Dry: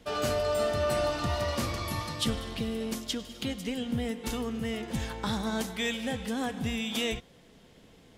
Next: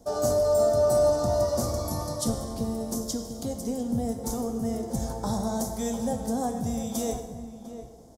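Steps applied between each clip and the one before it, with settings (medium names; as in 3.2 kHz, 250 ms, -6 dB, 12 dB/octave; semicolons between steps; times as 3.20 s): FFT filter 430 Hz 0 dB, 690 Hz +6 dB, 2.7 kHz -25 dB, 5.7 kHz +4 dB; echo from a far wall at 120 m, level -11 dB; plate-style reverb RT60 1.3 s, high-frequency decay 0.8×, DRR 6 dB; trim +1.5 dB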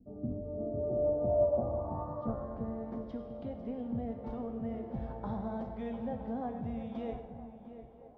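low-pass sweep 240 Hz -> 2.6 kHz, 0.29–3.22 s; distance through air 410 m; band-passed feedback delay 969 ms, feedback 62%, band-pass 670 Hz, level -16.5 dB; trim -8 dB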